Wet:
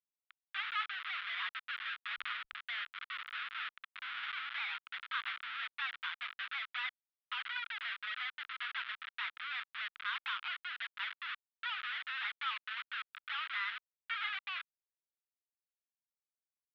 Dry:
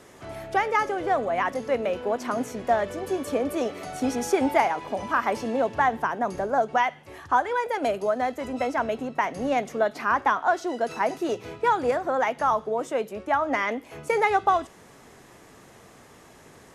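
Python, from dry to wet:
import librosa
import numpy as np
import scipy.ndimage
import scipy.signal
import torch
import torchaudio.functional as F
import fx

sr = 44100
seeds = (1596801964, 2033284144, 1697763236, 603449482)

y = fx.schmitt(x, sr, flips_db=-27.5)
y = scipy.signal.sosfilt(scipy.signal.ellip(3, 1.0, 50, [1300.0, 3500.0], 'bandpass', fs=sr, output='sos'), y)
y = fx.pre_swell(y, sr, db_per_s=34.0, at=(2.04, 2.66))
y = F.gain(torch.from_numpy(y), -3.5).numpy()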